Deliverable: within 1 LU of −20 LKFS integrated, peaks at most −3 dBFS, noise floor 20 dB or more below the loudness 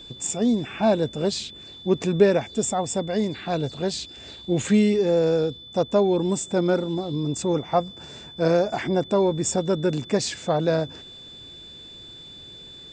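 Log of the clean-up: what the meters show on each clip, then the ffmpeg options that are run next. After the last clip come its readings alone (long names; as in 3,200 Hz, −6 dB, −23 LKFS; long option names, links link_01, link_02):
interfering tone 3,500 Hz; level of the tone −41 dBFS; integrated loudness −23.5 LKFS; sample peak −5.0 dBFS; target loudness −20.0 LKFS
→ -af "bandreject=frequency=3500:width=30"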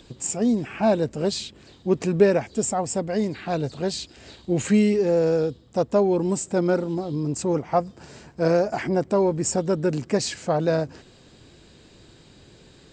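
interfering tone none found; integrated loudness −23.5 LKFS; sample peak −5.0 dBFS; target loudness −20.0 LKFS
→ -af "volume=3.5dB,alimiter=limit=-3dB:level=0:latency=1"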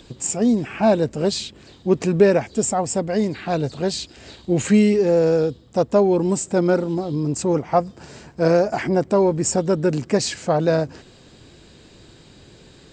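integrated loudness −20.0 LKFS; sample peak −3.0 dBFS; background noise floor −49 dBFS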